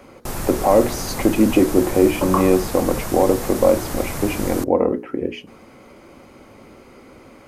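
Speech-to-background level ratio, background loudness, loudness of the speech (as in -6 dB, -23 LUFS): 9.5 dB, -28.5 LUFS, -19.0 LUFS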